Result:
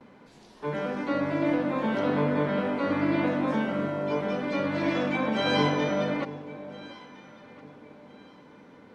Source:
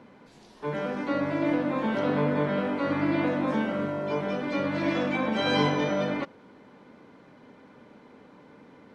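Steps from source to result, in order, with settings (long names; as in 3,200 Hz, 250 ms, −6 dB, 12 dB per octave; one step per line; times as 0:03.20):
noise gate with hold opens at −45 dBFS
on a send: delay that swaps between a low-pass and a high-pass 680 ms, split 830 Hz, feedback 51%, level −13.5 dB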